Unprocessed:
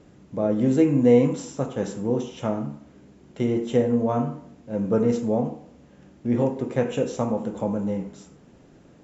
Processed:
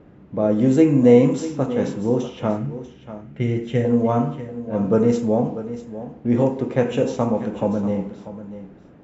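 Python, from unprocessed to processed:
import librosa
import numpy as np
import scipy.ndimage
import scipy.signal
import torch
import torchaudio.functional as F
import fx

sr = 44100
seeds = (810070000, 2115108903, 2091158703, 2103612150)

y = fx.graphic_eq_10(x, sr, hz=(125, 250, 500, 1000, 2000, 4000), db=(5, -5, -4, -10, 5, -4), at=(2.57, 3.85))
y = fx.env_lowpass(y, sr, base_hz=2000.0, full_db=-16.0)
y = y + 10.0 ** (-13.5 / 20.0) * np.pad(y, (int(641 * sr / 1000.0), 0))[:len(y)]
y = F.gain(torch.from_numpy(y), 4.0).numpy()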